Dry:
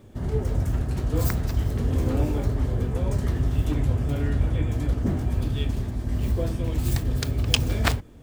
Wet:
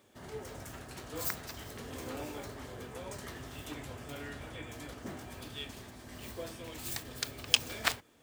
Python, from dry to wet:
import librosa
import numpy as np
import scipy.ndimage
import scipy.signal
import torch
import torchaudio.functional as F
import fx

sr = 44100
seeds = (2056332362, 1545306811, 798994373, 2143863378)

y = fx.highpass(x, sr, hz=1300.0, slope=6)
y = F.gain(torch.from_numpy(y), -2.5).numpy()